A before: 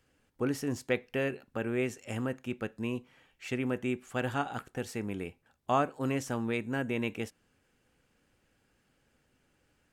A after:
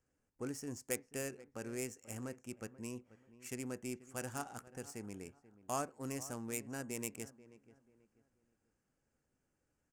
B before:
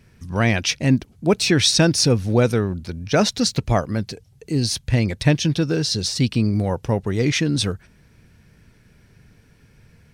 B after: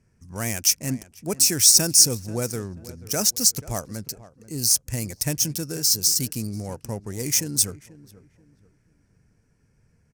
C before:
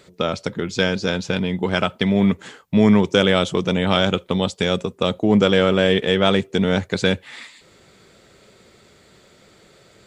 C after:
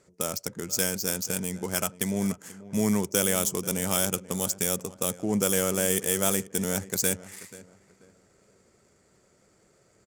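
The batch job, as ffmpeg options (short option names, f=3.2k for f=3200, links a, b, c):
-filter_complex "[0:a]asplit=2[a][b];[b]adelay=486,lowpass=f=2.7k:p=1,volume=-17dB,asplit=2[c][d];[d]adelay=486,lowpass=f=2.7k:p=1,volume=0.32,asplit=2[e][f];[f]adelay=486,lowpass=f=2.7k:p=1,volume=0.32[g];[a][c][e][g]amix=inputs=4:normalize=0,adynamicsmooth=sensitivity=7.5:basefreq=2.2k,aexciter=amount=15.1:drive=7.4:freq=5.7k,volume=-11dB"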